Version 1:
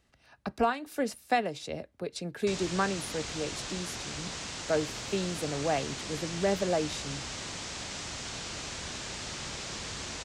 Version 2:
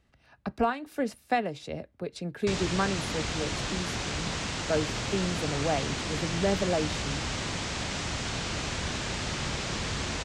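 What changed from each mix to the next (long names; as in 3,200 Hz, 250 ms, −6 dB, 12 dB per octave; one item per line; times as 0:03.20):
background +7.0 dB
master: add bass and treble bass +4 dB, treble −6 dB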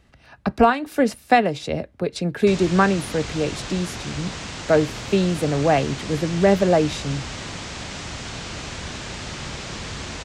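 speech +11.0 dB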